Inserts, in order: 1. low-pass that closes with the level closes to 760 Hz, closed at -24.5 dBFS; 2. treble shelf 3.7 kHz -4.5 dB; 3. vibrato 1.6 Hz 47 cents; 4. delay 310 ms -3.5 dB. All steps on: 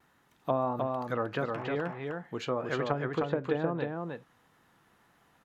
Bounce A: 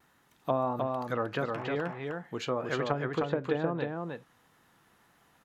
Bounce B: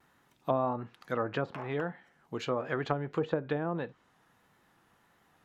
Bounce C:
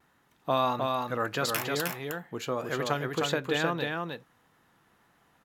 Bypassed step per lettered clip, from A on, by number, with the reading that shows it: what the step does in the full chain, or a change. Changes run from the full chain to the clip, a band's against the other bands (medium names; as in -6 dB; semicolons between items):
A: 2, 4 kHz band +2.0 dB; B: 4, momentary loudness spread change +2 LU; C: 1, 4 kHz band +11.5 dB